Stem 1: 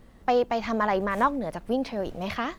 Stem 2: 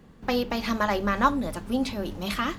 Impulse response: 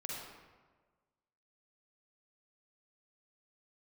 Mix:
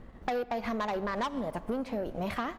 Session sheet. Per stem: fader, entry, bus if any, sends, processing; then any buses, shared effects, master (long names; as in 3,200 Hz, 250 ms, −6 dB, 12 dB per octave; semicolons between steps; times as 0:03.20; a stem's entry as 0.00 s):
+2.5 dB, 0.00 s, send −11.5 dB, low-pass filter 1,800 Hz 12 dB per octave; soft clipping −22 dBFS, distortion −12 dB
−17.5 dB, 1.6 ms, no send, no processing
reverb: on, RT60 1.4 s, pre-delay 41 ms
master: high-shelf EQ 3,600 Hz +11 dB; transient designer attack 0 dB, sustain −5 dB; downward compressor, threshold −30 dBFS, peak gain reduction 11 dB